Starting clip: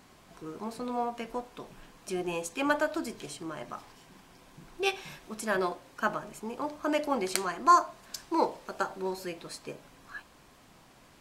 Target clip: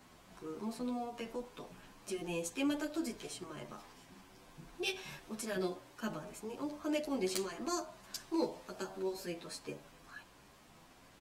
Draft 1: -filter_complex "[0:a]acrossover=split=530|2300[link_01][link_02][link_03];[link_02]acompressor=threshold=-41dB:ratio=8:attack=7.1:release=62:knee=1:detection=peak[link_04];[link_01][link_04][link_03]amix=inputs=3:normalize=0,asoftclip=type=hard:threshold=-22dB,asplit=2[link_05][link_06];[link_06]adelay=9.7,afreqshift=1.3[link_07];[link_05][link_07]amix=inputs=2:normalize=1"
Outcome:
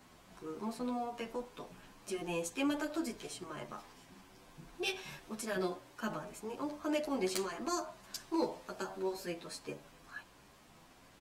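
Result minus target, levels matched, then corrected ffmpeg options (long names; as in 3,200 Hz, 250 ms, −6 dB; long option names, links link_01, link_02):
downward compressor: peak gain reduction −7 dB
-filter_complex "[0:a]acrossover=split=530|2300[link_01][link_02][link_03];[link_02]acompressor=threshold=-49dB:ratio=8:attack=7.1:release=62:knee=1:detection=peak[link_04];[link_01][link_04][link_03]amix=inputs=3:normalize=0,asoftclip=type=hard:threshold=-22dB,asplit=2[link_05][link_06];[link_06]adelay=9.7,afreqshift=1.3[link_07];[link_05][link_07]amix=inputs=2:normalize=1"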